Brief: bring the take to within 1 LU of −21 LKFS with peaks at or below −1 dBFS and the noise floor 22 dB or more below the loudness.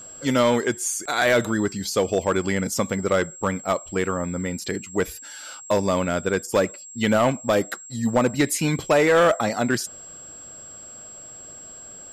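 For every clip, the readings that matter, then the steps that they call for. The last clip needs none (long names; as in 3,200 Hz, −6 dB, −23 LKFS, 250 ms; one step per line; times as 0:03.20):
share of clipped samples 0.8%; peaks flattened at −12.0 dBFS; interfering tone 7,600 Hz; level of the tone −39 dBFS; integrated loudness −23.0 LKFS; sample peak −12.0 dBFS; target loudness −21.0 LKFS
→ clipped peaks rebuilt −12 dBFS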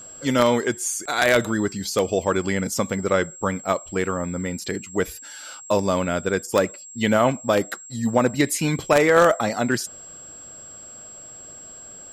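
share of clipped samples 0.0%; interfering tone 7,600 Hz; level of the tone −39 dBFS
→ notch filter 7,600 Hz, Q 30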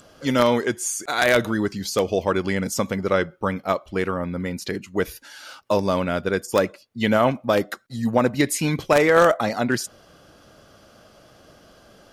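interfering tone none found; integrated loudness −22.0 LKFS; sample peak −3.0 dBFS; target loudness −21.0 LKFS
→ level +1 dB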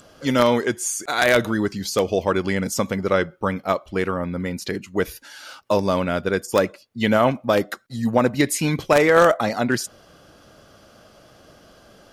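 integrated loudness −21.0 LKFS; sample peak −2.0 dBFS; background noise floor −52 dBFS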